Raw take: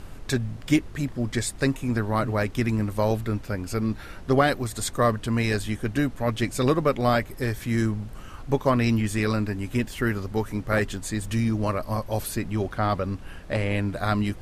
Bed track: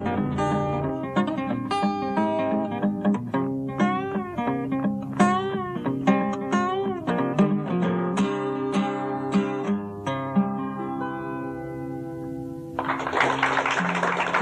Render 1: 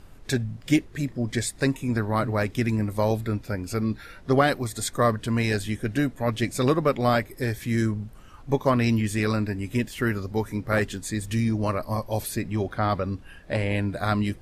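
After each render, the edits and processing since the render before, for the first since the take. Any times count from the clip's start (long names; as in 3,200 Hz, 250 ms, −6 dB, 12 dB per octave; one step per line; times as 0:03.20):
noise reduction from a noise print 8 dB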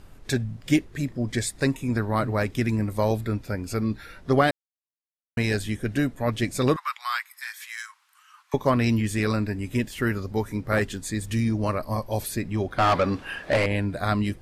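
0:04.51–0:05.37: silence
0:06.76–0:08.54: Butterworth high-pass 1,000 Hz 48 dB per octave
0:12.78–0:13.66: mid-hump overdrive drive 22 dB, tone 3,400 Hz, clips at −12 dBFS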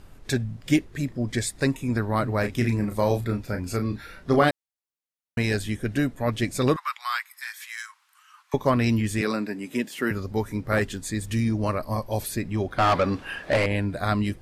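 0:02.40–0:04.49: double-tracking delay 34 ms −7 dB
0:09.21–0:10.11: high-pass filter 190 Hz 24 dB per octave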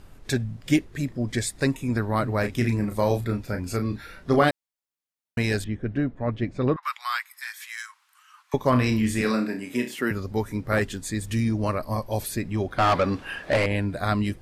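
0:05.64–0:06.83: head-to-tape spacing loss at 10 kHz 37 dB
0:08.69–0:09.96: flutter between parallel walls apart 5.5 metres, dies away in 0.31 s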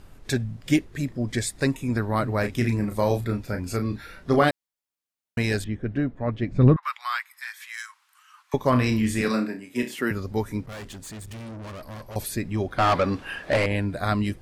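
0:06.51–0:07.74: bass and treble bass +13 dB, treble −5 dB
0:09.28–0:09.83: multiband upward and downward expander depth 100%
0:10.66–0:12.16: tube saturation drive 36 dB, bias 0.6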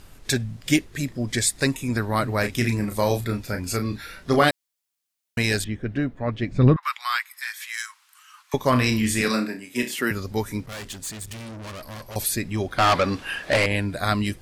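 high-shelf EQ 2,000 Hz +9 dB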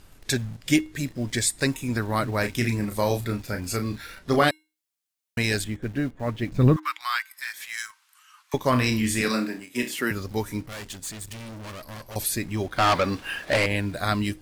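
in parallel at −10 dB: bit-depth reduction 6 bits, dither none
on the sum: tuned comb filter 310 Hz, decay 0.33 s, harmonics odd, mix 40%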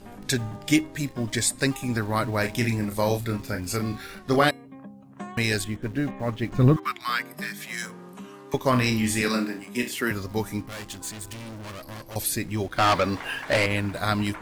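mix in bed track −18.5 dB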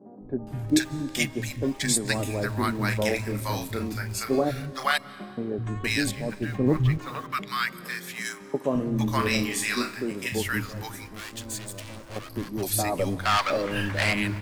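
three-band delay without the direct sound mids, lows, highs 210/470 ms, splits 160/760 Hz
comb and all-pass reverb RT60 2.2 s, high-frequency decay 0.9×, pre-delay 110 ms, DRR 19 dB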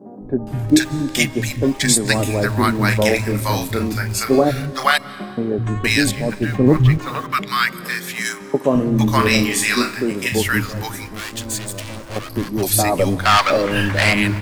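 level +9.5 dB
brickwall limiter −2 dBFS, peak gain reduction 3 dB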